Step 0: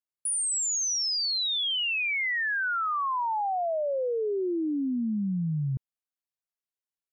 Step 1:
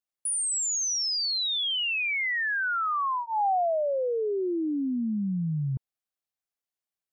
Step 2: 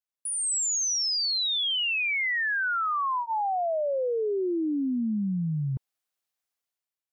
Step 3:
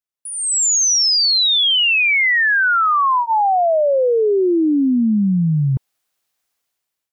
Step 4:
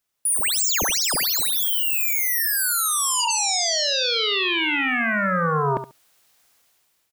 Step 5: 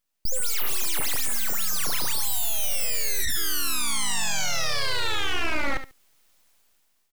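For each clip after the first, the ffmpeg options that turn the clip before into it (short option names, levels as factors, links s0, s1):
-af "equalizer=f=810:t=o:w=0.67:g=5,bandreject=f=930:w=6.9"
-af "lowshelf=f=350:g=-7,dynaudnorm=f=100:g=11:m=3.16,alimiter=limit=0.1:level=0:latency=1:release=256,volume=0.631"
-af "dynaudnorm=f=320:g=3:m=3.98"
-af "aeval=exprs='0.266*sin(PI/2*6.31*val(0)/0.266)':c=same,aecho=1:1:70|140:0.299|0.0478,volume=0.422"
-af "aeval=exprs='abs(val(0))':c=same"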